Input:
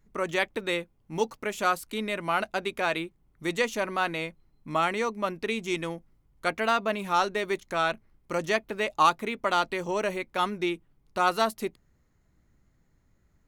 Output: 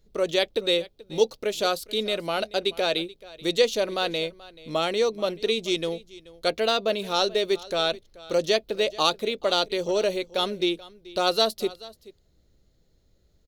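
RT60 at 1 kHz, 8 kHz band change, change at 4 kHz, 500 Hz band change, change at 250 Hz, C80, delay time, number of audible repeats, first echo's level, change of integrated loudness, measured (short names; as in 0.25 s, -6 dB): none, +4.0 dB, +10.0 dB, +6.0 dB, +2.0 dB, none, 0.432 s, 1, -20.0 dB, +3.0 dB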